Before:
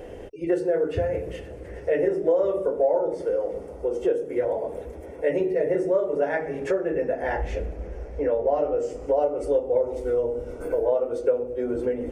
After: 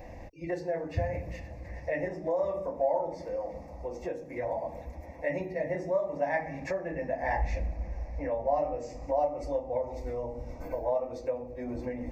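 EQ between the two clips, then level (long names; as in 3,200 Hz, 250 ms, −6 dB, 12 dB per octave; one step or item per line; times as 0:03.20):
phaser with its sweep stopped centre 2,100 Hz, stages 8
0.0 dB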